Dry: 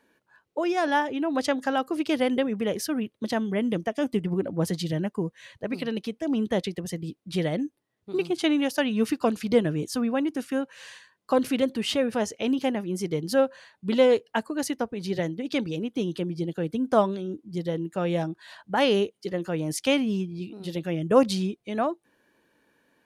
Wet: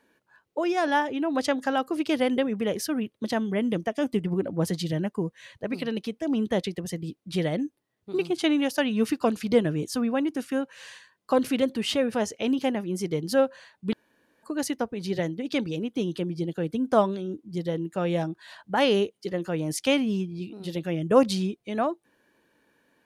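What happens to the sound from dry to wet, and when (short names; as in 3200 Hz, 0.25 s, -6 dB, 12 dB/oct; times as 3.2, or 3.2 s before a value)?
13.93–14.43 room tone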